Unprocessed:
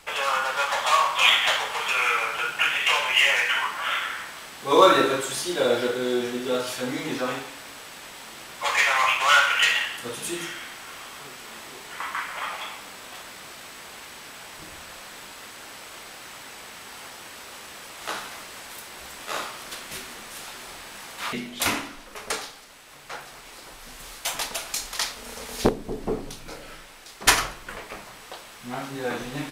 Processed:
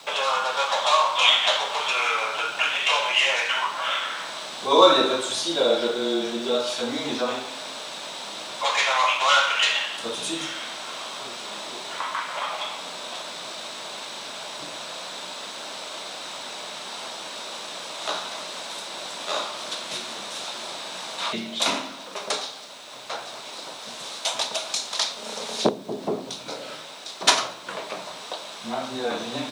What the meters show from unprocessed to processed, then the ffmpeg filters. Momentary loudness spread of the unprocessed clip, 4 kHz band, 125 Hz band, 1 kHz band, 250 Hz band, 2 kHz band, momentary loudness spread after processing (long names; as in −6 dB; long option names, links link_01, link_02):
21 LU, +3.0 dB, −5.0 dB, +1.0 dB, 0.0 dB, −2.5 dB, 14 LU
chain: -filter_complex "[0:a]highpass=frequency=170:width=0.5412,highpass=frequency=170:width=1.3066,equalizer=frequency=630:width_type=q:width=4:gain=8,equalizer=frequency=990:width_type=q:width=4:gain=4,equalizer=frequency=1900:width_type=q:width=4:gain=-5,equalizer=frequency=3800:width_type=q:width=4:gain=10,equalizer=frequency=5700:width_type=q:width=4:gain=3,lowpass=frequency=9000:width=0.5412,lowpass=frequency=9000:width=1.3066,asplit=2[link_01][link_02];[link_02]acompressor=threshold=-34dB:ratio=6,volume=3dB[link_03];[link_01][link_03]amix=inputs=2:normalize=0,acrusher=bits=8:mix=0:aa=0.000001,afreqshift=-16,volume=-3.5dB"